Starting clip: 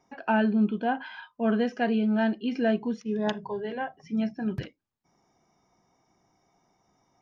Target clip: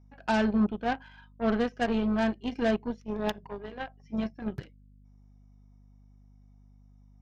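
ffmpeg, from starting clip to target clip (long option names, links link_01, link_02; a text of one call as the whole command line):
ffmpeg -i in.wav -af "aeval=exprs='val(0)+0.00794*(sin(2*PI*50*n/s)+sin(2*PI*2*50*n/s)/2+sin(2*PI*3*50*n/s)/3+sin(2*PI*4*50*n/s)/4+sin(2*PI*5*50*n/s)/5)':channel_layout=same,aeval=exprs='0.211*(cos(1*acos(clip(val(0)/0.211,-1,1)))-cos(1*PI/2))+0.0168*(cos(5*acos(clip(val(0)/0.211,-1,1)))-cos(5*PI/2))+0.0335*(cos(7*acos(clip(val(0)/0.211,-1,1)))-cos(7*PI/2))':channel_layout=same,volume=-2.5dB" out.wav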